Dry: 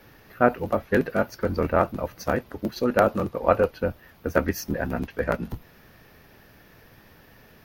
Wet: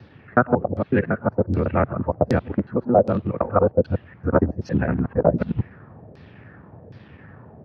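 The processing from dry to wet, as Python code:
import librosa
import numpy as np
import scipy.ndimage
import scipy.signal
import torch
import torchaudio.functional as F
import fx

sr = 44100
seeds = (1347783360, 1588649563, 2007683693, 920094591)

y = fx.local_reverse(x, sr, ms=92.0)
y = scipy.signal.sosfilt(scipy.signal.butter(4, 91.0, 'highpass', fs=sr, output='sos'), y)
y = fx.riaa(y, sr, side='playback')
y = fx.rider(y, sr, range_db=4, speed_s=0.5)
y = fx.filter_lfo_lowpass(y, sr, shape='saw_down', hz=1.3, low_hz=500.0, high_hz=4900.0, q=2.7)
y = y * 10.0 ** (-2.0 / 20.0)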